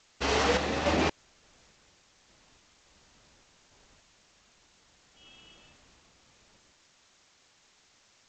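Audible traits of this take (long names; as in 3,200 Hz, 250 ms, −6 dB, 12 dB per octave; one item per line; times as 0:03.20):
sample-and-hold tremolo, depth 65%
a quantiser's noise floor 10 bits, dither triangular
G.722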